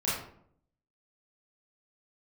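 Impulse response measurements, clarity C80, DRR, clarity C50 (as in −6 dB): 6.0 dB, −9.5 dB, 1.5 dB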